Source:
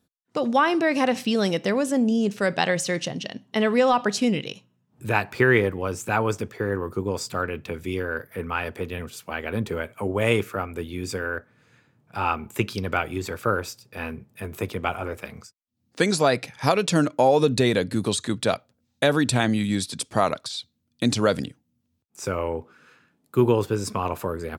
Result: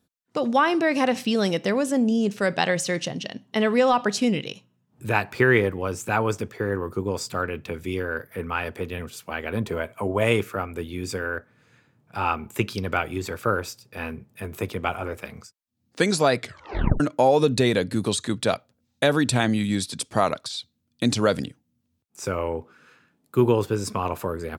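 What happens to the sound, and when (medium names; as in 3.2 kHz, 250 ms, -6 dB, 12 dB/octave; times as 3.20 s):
9.57–10.24 s: small resonant body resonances 660/1000 Hz, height 8 dB
16.37 s: tape stop 0.63 s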